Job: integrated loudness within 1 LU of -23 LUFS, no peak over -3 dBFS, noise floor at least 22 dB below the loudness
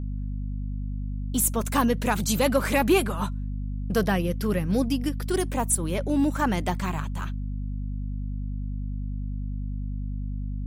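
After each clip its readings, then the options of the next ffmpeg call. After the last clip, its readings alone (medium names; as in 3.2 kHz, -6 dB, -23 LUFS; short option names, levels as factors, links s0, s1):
hum 50 Hz; highest harmonic 250 Hz; hum level -28 dBFS; loudness -27.0 LUFS; peak level -9.0 dBFS; loudness target -23.0 LUFS
-> -af "bandreject=f=50:t=h:w=6,bandreject=f=100:t=h:w=6,bandreject=f=150:t=h:w=6,bandreject=f=200:t=h:w=6,bandreject=f=250:t=h:w=6"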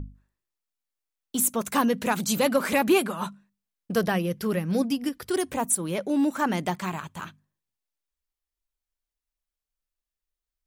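hum not found; loudness -26.0 LUFS; peak level -9.5 dBFS; loudness target -23.0 LUFS
-> -af "volume=1.41"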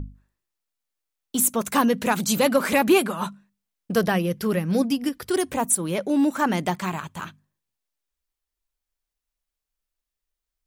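loudness -23.0 LUFS; peak level -6.5 dBFS; noise floor -86 dBFS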